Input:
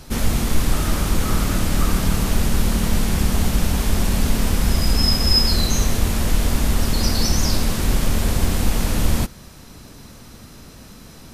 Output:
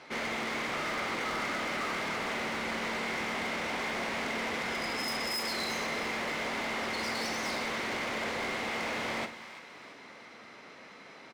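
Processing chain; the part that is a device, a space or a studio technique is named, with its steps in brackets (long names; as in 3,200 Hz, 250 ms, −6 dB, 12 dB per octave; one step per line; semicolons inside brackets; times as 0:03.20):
megaphone (band-pass filter 470–2,800 Hz; parametric band 2,100 Hz +11 dB 0.2 octaves; hard clipping −29.5 dBFS, distortion −10 dB; double-tracking delay 45 ms −11 dB)
echo with a time of its own for lows and highs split 890 Hz, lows 88 ms, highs 337 ms, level −13.5 dB
level −2 dB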